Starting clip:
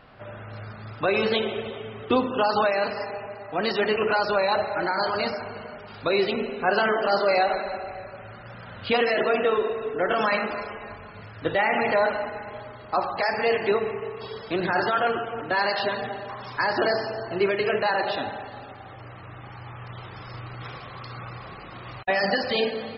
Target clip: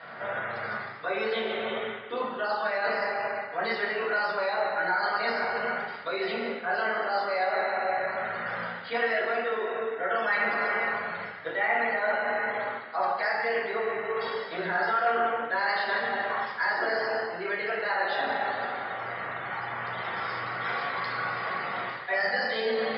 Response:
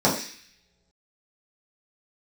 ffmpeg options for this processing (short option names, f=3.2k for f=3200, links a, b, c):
-filter_complex "[0:a]areverse,acompressor=threshold=-35dB:ratio=10,areverse,bandpass=f=1.9k:t=q:w=2.3:csg=0[a];[1:a]atrim=start_sample=2205,asetrate=37485,aresample=44100[b];[a][b]afir=irnorm=-1:irlink=0,volume=2dB"